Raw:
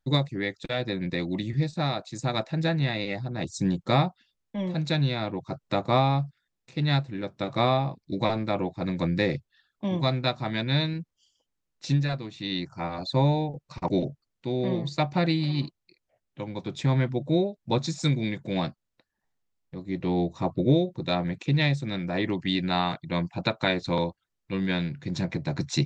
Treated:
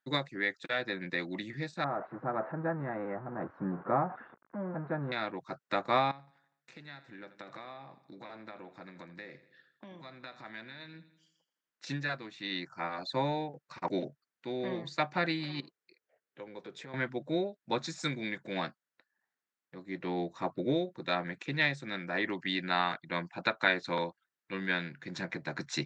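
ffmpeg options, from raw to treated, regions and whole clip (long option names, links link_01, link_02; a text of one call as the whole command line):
ffmpeg -i in.wav -filter_complex "[0:a]asettb=1/sr,asplit=3[link_01][link_02][link_03];[link_01]atrim=end=1.844[link_04];[link_02]atrim=start=1.84:end=5.12,asetpts=PTS-STARTPTS,afade=type=in:duration=0.004:curve=qsin,afade=type=out:start_time=3.276:duration=0.004:curve=qsin,aeval=exprs='val(0)+0.5*0.0299*sgn(val(0))':channel_layout=same,lowpass=frequency=1200:width=0.5412,lowpass=frequency=1200:width=1.3066[link_05];[link_03]atrim=start=5.116[link_06];[link_04][link_05]acrossfade=duration=0.004:curve1=hsin:curve2=qsin[link_07];[link_07][link_06]acrossfade=duration=0.004:curve1=qsin:curve2=hsin,asettb=1/sr,asplit=3[link_08][link_09][link_10];[link_08]atrim=end=6.114[link_11];[link_09]atrim=start=6.11:end=11.87,asetpts=PTS-STARTPTS,afade=type=in:duration=0.004:curve=qsin,afade=type=out:start_time=5.756:duration=0.004:curve=qsin,acompressor=threshold=-36dB:ratio=20:attack=3.2:release=140:knee=1:detection=peak,aecho=1:1:82|164|246|328|410:0.178|0.096|0.0519|0.028|0.0151,atrim=end_sample=254016[link_12];[link_10]atrim=start=11.866[link_13];[link_11][link_12]acrossfade=duration=0.004:curve1=hsin:curve2=qsin[link_14];[link_14][link_13]acrossfade=duration=0.004:curve1=qsin:curve2=hsin,asettb=1/sr,asplit=3[link_15][link_16][link_17];[link_15]atrim=end=15.604[link_18];[link_16]atrim=start=15.6:end=16.94,asetpts=PTS-STARTPTS,afade=type=in:duration=0.004:curve=qsin,afade=type=out:start_time=1.336:duration=0.004:curve=qsin,acompressor=threshold=-40dB:ratio=3:attack=3.2:release=140:knee=1:detection=peak,equalizer=frequency=450:width_type=o:width=0.44:gain=12[link_19];[link_17]atrim=start=16.936[link_20];[link_18][link_19]acrossfade=duration=0.004:curve1=hsin:curve2=qsin[link_21];[link_21][link_20]acrossfade=duration=0.004:curve1=qsin:curve2=hsin,highpass=230,equalizer=frequency=1600:width=1.4:gain=11.5,volume=-7dB" out.wav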